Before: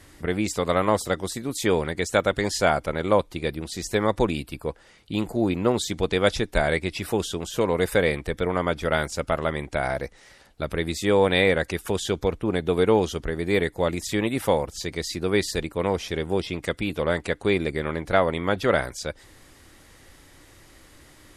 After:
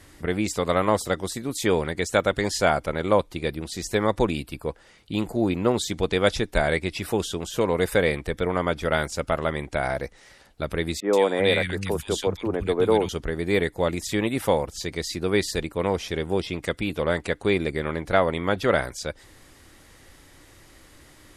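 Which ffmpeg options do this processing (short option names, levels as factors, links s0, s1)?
-filter_complex "[0:a]asettb=1/sr,asplit=3[s0][s1][s2];[s0]atrim=end=11.004[s3];[s1]atrim=start=11:end=13.09,asetpts=PTS-STARTPTS,afade=t=in:d=0.004:c=qsin,afade=t=out:st=2.086:d=0.004:c=qsin,acrossover=split=200|1700[s4][s5][s6];[s6]adelay=130[s7];[s4]adelay=370[s8];[s8][s5][s7]amix=inputs=3:normalize=0,atrim=end_sample=92169[s9];[s2]atrim=start=13.086[s10];[s3][s9]acrossfade=d=0.004:c1=hsin:c2=qsin[s11];[s11][s10]acrossfade=d=0.004:c1=qsin:c2=hsin"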